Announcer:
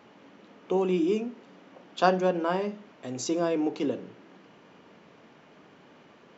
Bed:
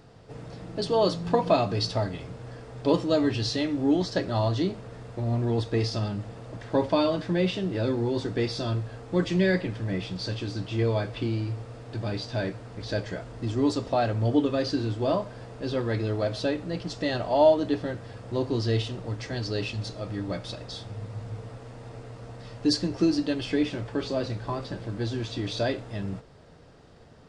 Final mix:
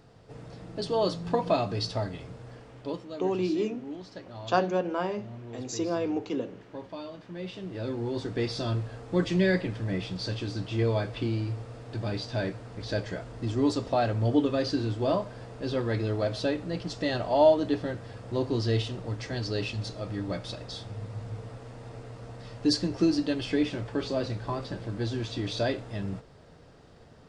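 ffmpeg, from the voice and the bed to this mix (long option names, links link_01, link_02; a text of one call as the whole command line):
ffmpeg -i stem1.wav -i stem2.wav -filter_complex "[0:a]adelay=2500,volume=-2.5dB[link_01];[1:a]volume=12dB,afade=type=out:start_time=2.38:duration=0.67:silence=0.223872,afade=type=in:start_time=7.28:duration=1.38:silence=0.16788[link_02];[link_01][link_02]amix=inputs=2:normalize=0" out.wav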